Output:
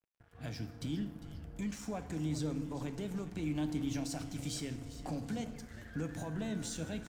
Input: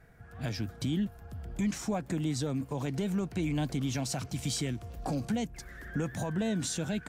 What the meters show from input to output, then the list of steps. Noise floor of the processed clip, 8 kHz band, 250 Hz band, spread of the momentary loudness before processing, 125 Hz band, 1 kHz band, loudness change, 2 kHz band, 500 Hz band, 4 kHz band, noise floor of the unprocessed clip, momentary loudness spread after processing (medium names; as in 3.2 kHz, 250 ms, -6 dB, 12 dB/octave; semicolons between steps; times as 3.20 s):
-57 dBFS, -7.5 dB, -5.5 dB, 7 LU, -6.5 dB, -7.0 dB, -6.0 dB, -7.0 dB, -7.0 dB, -7.0 dB, -51 dBFS, 8 LU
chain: frequency-shifting echo 402 ms, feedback 50%, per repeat -130 Hz, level -14 dB; FDN reverb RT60 1.3 s, low-frequency decay 1.5×, high-frequency decay 0.6×, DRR 8 dB; crossover distortion -50.5 dBFS; trim -7 dB